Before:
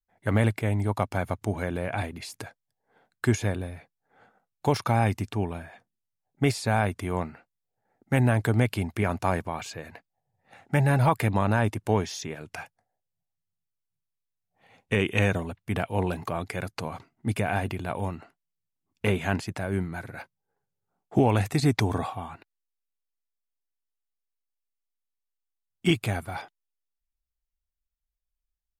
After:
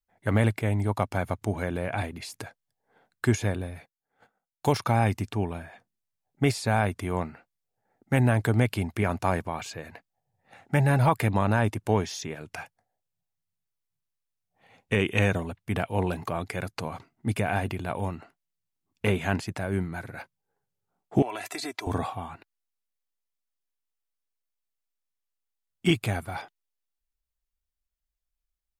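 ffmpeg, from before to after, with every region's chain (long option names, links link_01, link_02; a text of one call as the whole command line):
ffmpeg -i in.wav -filter_complex "[0:a]asettb=1/sr,asplit=3[link_01][link_02][link_03];[link_01]atrim=end=3.754[link_04];[link_02]atrim=start=3.75:end=4.73,asetpts=PTS-STARTPTS,afade=type=in:duration=0.004:curve=qsin,afade=type=out:start_time=0.976:duration=0.004:curve=qsin,agate=range=-13dB:threshold=-58dB:ratio=16:release=100:detection=peak,highshelf=frequency=4400:gain=8.5[link_05];[link_03]atrim=start=4.726[link_06];[link_04][link_05]acrossfade=duration=0.004:curve1=hsin:curve2=qsin[link_07];[link_07][link_06]acrossfade=duration=0.004:curve1=qsin:curve2=hsin,asettb=1/sr,asplit=3[link_08][link_09][link_10];[link_08]atrim=end=21.224[link_11];[link_09]atrim=start=21.22:end=21.87,asetpts=PTS-STARTPTS,afade=type=in:duration=0.004:curve=qsin,afade=type=out:start_time=0.646:duration=0.004:curve=qsin,highpass=530,aecho=1:1:3:0.72,atrim=end_sample=28665,acompressor=threshold=-30dB:ratio=6:attack=3.2:release=140:knee=1:detection=peak[link_12];[link_10]atrim=start=21.866[link_13];[link_11][link_12]acrossfade=duration=0.004:curve1=hsin:curve2=qsin[link_14];[link_14][link_13]acrossfade=duration=0.004:curve1=qsin:curve2=hsin" out.wav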